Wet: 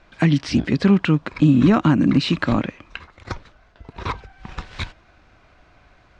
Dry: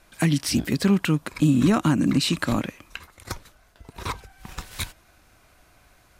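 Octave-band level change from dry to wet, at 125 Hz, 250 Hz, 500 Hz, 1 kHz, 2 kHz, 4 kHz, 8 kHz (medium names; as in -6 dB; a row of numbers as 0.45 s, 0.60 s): +4.5 dB, +4.5 dB, +4.5 dB, +4.0 dB, +3.5 dB, -0.5 dB, under -10 dB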